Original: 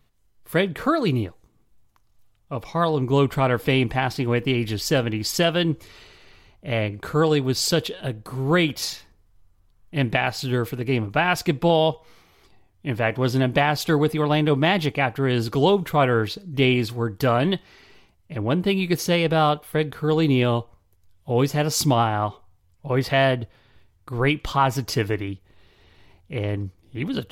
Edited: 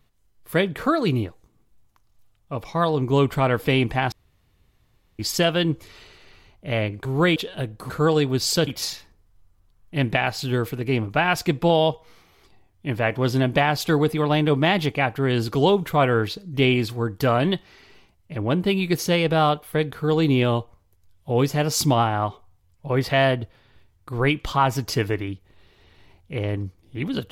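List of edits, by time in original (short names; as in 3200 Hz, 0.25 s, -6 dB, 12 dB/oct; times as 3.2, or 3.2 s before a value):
4.12–5.19 room tone
7.05–7.82 swap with 8.36–8.67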